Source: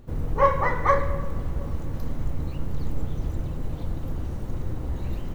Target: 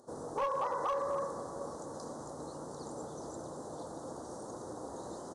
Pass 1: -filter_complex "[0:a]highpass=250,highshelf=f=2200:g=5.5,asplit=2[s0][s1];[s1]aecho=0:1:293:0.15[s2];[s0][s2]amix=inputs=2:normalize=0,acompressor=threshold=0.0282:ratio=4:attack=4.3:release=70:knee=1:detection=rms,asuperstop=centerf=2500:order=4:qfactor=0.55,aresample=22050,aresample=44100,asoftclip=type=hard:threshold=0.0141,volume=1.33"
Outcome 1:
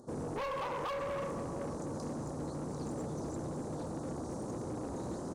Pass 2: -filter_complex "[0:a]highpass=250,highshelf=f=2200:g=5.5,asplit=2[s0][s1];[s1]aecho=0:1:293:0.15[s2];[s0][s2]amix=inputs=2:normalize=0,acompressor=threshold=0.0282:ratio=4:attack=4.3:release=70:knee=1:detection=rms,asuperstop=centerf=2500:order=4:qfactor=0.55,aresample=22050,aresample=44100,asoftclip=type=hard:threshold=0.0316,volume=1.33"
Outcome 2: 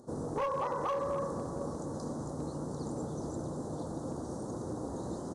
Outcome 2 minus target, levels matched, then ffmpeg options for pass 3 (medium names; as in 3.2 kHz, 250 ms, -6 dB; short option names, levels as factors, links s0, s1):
250 Hz band +6.0 dB
-filter_complex "[0:a]highpass=500,highshelf=f=2200:g=5.5,asplit=2[s0][s1];[s1]aecho=0:1:293:0.15[s2];[s0][s2]amix=inputs=2:normalize=0,acompressor=threshold=0.0282:ratio=4:attack=4.3:release=70:knee=1:detection=rms,asuperstop=centerf=2500:order=4:qfactor=0.55,aresample=22050,aresample=44100,asoftclip=type=hard:threshold=0.0316,volume=1.33"